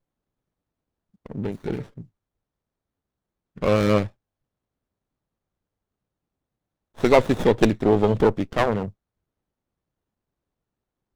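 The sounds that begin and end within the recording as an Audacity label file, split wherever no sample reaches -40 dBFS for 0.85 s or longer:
1.260000	2.020000	sound
3.570000	4.080000	sound
6.980000	8.900000	sound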